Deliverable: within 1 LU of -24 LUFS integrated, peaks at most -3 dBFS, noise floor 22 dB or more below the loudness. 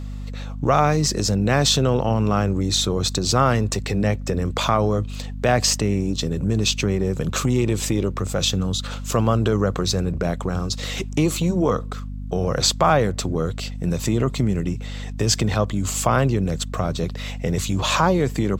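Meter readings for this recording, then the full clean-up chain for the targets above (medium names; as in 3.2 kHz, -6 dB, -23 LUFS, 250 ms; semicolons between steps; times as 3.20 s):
hum 50 Hz; highest harmonic 250 Hz; hum level -28 dBFS; loudness -21.5 LUFS; peak level -4.5 dBFS; loudness target -24.0 LUFS
-> de-hum 50 Hz, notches 5; trim -2.5 dB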